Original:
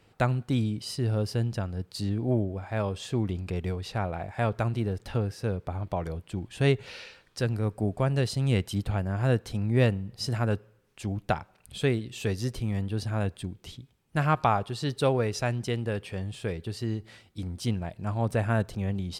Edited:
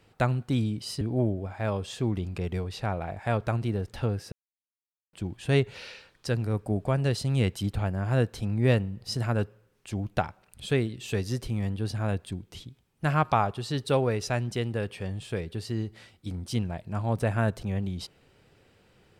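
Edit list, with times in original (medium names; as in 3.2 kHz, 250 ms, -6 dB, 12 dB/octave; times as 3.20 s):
1.01–2.13 s: delete
5.44–6.25 s: mute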